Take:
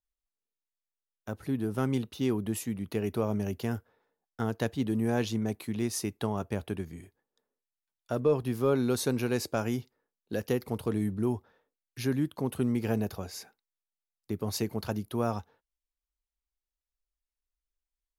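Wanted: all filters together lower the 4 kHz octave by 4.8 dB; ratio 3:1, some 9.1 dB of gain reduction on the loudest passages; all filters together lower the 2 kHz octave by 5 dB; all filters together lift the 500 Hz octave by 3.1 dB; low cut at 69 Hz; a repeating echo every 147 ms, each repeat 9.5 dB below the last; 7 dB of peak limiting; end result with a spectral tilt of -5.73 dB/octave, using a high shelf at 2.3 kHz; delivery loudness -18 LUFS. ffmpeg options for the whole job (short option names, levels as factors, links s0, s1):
-af "highpass=69,equalizer=f=500:t=o:g=4,equalizer=f=2000:t=o:g=-7.5,highshelf=f=2300:g=4.5,equalizer=f=4000:t=o:g=-9,acompressor=threshold=0.0355:ratio=3,alimiter=level_in=1.06:limit=0.0631:level=0:latency=1,volume=0.944,aecho=1:1:147|294|441|588:0.335|0.111|0.0365|0.012,volume=7.5"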